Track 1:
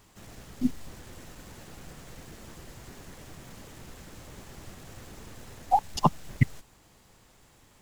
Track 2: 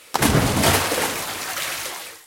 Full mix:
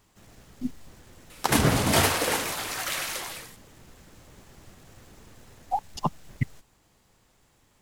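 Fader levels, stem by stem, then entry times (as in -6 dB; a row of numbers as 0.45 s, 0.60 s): -5.0 dB, -4.0 dB; 0.00 s, 1.30 s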